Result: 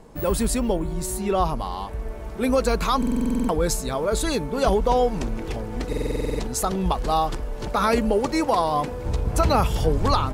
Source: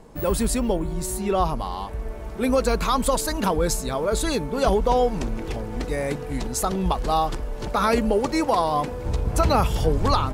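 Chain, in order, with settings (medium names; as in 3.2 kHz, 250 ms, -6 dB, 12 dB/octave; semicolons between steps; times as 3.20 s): buffer glitch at 2.98/5.88 s, samples 2048, times 10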